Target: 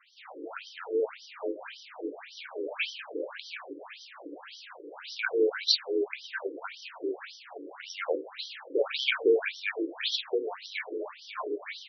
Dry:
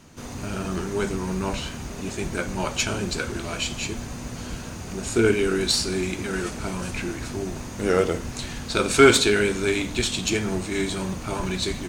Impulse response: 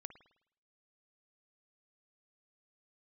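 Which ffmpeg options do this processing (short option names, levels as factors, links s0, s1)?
-af "afreqshift=43,afftfilt=real='re*between(b*sr/1024,370*pow(4300/370,0.5+0.5*sin(2*PI*1.8*pts/sr))/1.41,370*pow(4300/370,0.5+0.5*sin(2*PI*1.8*pts/sr))*1.41)':imag='im*between(b*sr/1024,370*pow(4300/370,0.5+0.5*sin(2*PI*1.8*pts/sr))/1.41,370*pow(4300/370,0.5+0.5*sin(2*PI*1.8*pts/sr))*1.41)':win_size=1024:overlap=0.75"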